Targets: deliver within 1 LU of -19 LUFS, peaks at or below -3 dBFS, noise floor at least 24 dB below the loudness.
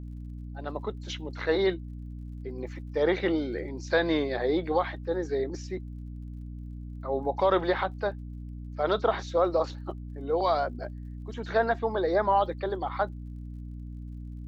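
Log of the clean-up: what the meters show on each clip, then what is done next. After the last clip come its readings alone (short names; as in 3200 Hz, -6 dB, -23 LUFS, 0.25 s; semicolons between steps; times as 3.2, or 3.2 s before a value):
ticks 36/s; hum 60 Hz; harmonics up to 300 Hz; hum level -37 dBFS; loudness -29.0 LUFS; peak -12.0 dBFS; loudness target -19.0 LUFS
-> de-click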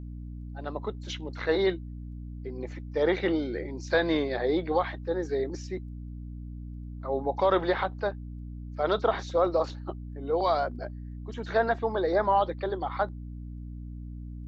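ticks 0.069/s; hum 60 Hz; harmonics up to 300 Hz; hum level -37 dBFS
-> notches 60/120/180/240/300 Hz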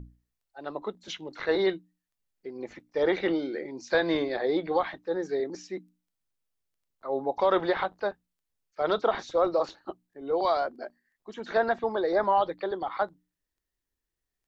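hum none; loudness -28.5 LUFS; peak -13.0 dBFS; loudness target -19.0 LUFS
-> gain +9.5 dB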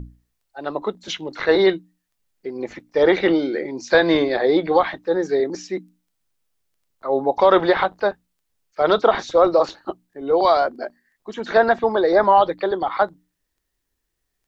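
loudness -19.0 LUFS; peak -3.5 dBFS; noise floor -76 dBFS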